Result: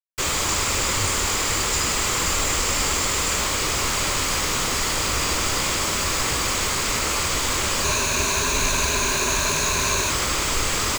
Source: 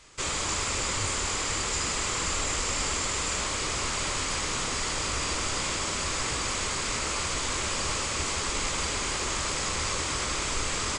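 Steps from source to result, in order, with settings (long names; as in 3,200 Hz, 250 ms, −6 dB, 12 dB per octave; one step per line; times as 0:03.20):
0:07.84–0:10.10: EQ curve with evenly spaced ripples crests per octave 1.5, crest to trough 11 dB
bit-depth reduction 6 bits, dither none
level +6.5 dB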